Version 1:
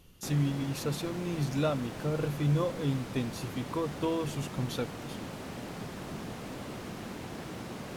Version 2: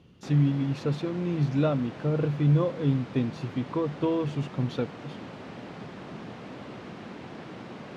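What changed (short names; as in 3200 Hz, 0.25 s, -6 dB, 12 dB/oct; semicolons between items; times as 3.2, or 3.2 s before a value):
speech: add low shelf 460 Hz +8.5 dB; master: add BPF 120–3700 Hz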